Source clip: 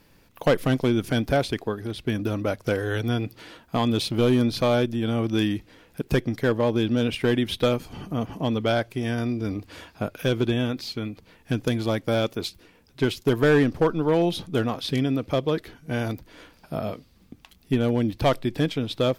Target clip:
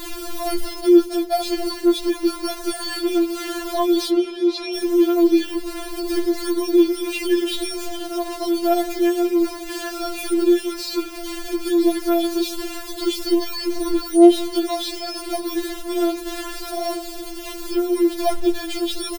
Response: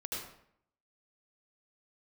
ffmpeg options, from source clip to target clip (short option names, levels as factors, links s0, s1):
-filter_complex "[0:a]aeval=exprs='val(0)+0.5*0.0501*sgn(val(0))':c=same,equalizer=f=450:w=1.5:g=9,asplit=3[s0][s1][s2];[s0]afade=t=out:st=0.73:d=0.02[s3];[s1]agate=range=0.158:threshold=0.112:ratio=16:detection=peak,afade=t=in:st=0.73:d=0.02,afade=t=out:st=1.44:d=0.02[s4];[s2]afade=t=in:st=1.44:d=0.02[s5];[s3][s4][s5]amix=inputs=3:normalize=0,asettb=1/sr,asplit=3[s6][s7][s8];[s6]atrim=end=5.514[s9];[s7]atrim=start=5.51:end=6.08,asetpts=PTS-STARTPTS,afade=t=in:d=0.004:c=qsin,afade=t=out:st=0.566:d=0.004:c=qsin,tiltshelf=f=780:g=3.5[s10];[s8]atrim=start=6.076[s11];[s9][s10]acrossfade=d=0.004:c1=hsin:c2=qsin[s12];[s12][s11]acrossfade=d=0.004:c1=qsin:c2=hsin,acrossover=split=1900[s13][s14];[s13]acrusher=samples=9:mix=1:aa=0.000001[s15];[s15][s14]amix=inputs=2:normalize=0,asettb=1/sr,asplit=3[s16][s17][s18];[s16]atrim=end=4.094[s19];[s17]atrim=start=4.09:end=4.75,asetpts=PTS-STARTPTS,afade=t=in:d=0.004:c=qsin,afade=t=out:st=0.656:d=0.004:c=qsin,highpass=100,lowpass=4400[s20];[s18]atrim=start=4.746[s21];[s19][s20]acrossfade=d=0.004:c1=hsin:c2=qsin[s22];[s22][s21]acrossfade=d=0.004:c1=qsin:c2=hsin,aecho=1:1:181|362|543|724:0.0708|0.0411|0.0238|0.0138,alimiter=level_in=3.16:limit=0.891:release=50:level=0:latency=1,afftfilt=real='re*4*eq(mod(b,16),0)':imag='im*4*eq(mod(b,16),0)':win_size=2048:overlap=0.75,volume=0.398"